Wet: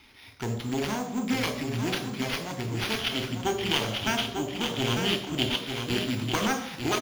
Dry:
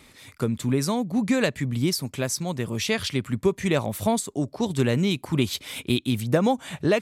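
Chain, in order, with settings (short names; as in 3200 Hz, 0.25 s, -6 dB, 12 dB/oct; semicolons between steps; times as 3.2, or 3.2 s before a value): self-modulated delay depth 0.78 ms; sample-and-hold 6×; 2.98–5.61 bell 3100 Hz +12.5 dB 0.34 oct; short-mantissa float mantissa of 4-bit; bell 160 Hz -9 dB 0.84 oct; echo 0.897 s -6.5 dB; reverb RT60 0.70 s, pre-delay 21 ms, DRR 6 dB; gain -8 dB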